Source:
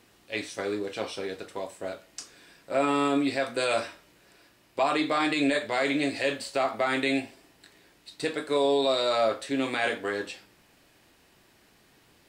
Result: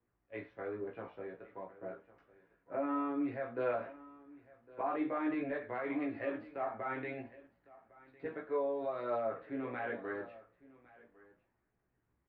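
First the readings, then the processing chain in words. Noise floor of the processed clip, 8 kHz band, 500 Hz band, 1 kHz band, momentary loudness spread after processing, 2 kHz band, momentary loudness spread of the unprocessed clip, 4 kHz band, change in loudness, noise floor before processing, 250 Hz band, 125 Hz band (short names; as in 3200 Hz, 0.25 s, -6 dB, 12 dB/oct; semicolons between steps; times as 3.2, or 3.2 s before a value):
-81 dBFS, under -35 dB, -10.5 dB, -10.5 dB, 14 LU, -14.5 dB, 14 LU, under -30 dB, -11.0 dB, -61 dBFS, -9.5 dB, -9.5 dB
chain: LPF 1800 Hz 24 dB/oct; limiter -20.5 dBFS, peak gain reduction 6 dB; chorus voices 2, 0.55 Hz, delay 17 ms, depth 1 ms; echo 1.106 s -15.5 dB; three-band expander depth 40%; gain -5 dB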